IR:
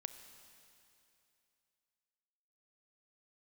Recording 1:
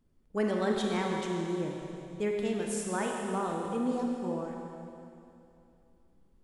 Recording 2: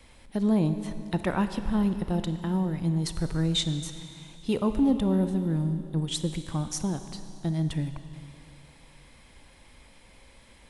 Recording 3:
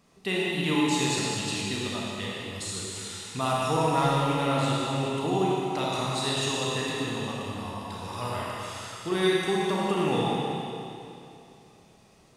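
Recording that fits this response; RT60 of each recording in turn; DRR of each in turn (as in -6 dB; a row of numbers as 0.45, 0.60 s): 2; 2.7, 2.8, 2.7 s; 0.0, 9.0, -6.0 dB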